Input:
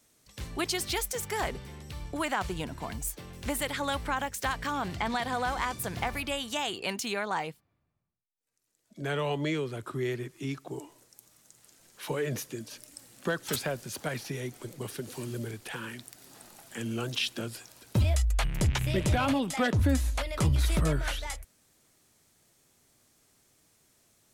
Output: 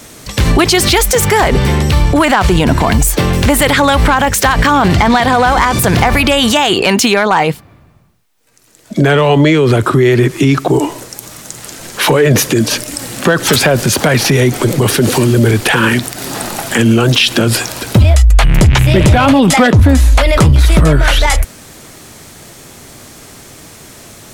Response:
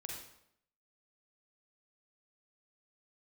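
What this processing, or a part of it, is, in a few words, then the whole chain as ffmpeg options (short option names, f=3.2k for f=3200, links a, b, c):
loud club master: -af "highshelf=f=4.1k:g=-6,acompressor=threshold=-30dB:ratio=2.5,asoftclip=type=hard:threshold=-25.5dB,alimiter=level_in=34.5dB:limit=-1dB:release=50:level=0:latency=1,volume=-1dB"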